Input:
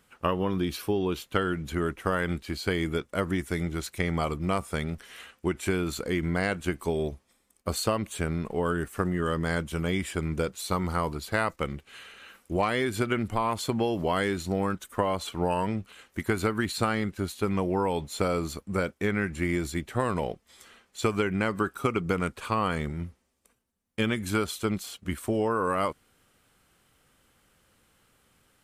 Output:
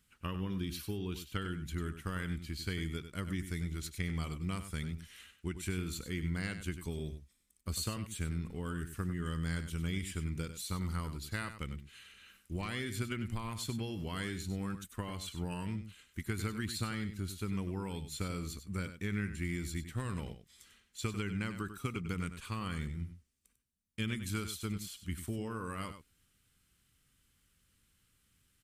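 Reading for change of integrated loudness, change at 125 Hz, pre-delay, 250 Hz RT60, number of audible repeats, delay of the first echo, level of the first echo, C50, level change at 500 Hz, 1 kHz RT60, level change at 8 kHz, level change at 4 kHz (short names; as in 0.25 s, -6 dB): -10.0 dB, -5.0 dB, none, none, 1, 97 ms, -10.5 dB, none, -17.0 dB, none, -5.0 dB, -6.5 dB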